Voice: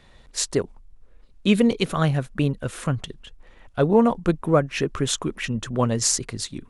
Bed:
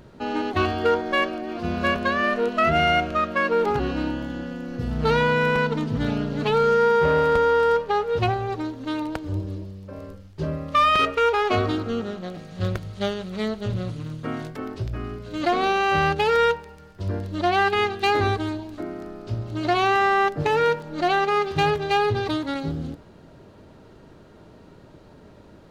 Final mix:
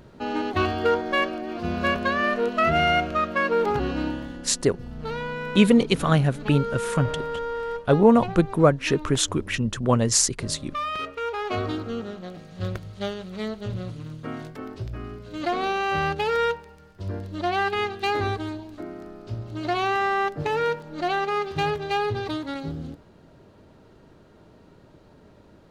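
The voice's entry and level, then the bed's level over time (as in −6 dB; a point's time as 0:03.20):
4.10 s, +1.5 dB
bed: 0:04.08 −1 dB
0:04.60 −11 dB
0:11.14 −11 dB
0:11.69 −4 dB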